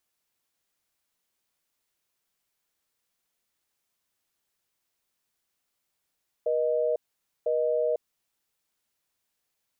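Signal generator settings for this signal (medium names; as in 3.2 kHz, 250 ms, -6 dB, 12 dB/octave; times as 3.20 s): call progress tone busy tone, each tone -25.5 dBFS 1.76 s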